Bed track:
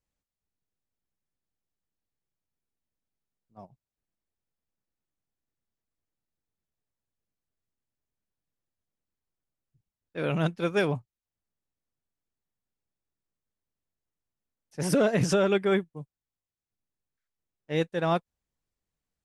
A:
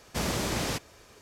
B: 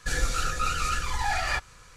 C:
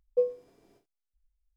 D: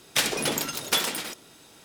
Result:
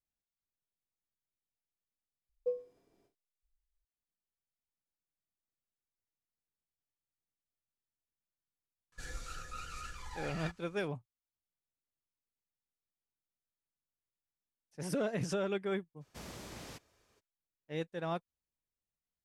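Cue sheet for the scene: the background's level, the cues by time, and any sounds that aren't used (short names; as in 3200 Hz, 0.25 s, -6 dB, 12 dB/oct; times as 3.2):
bed track -11 dB
2.29 replace with C -9.5 dB
8.92 add B -17.5 dB
16 add A -18 dB, fades 0.02 s
not used: D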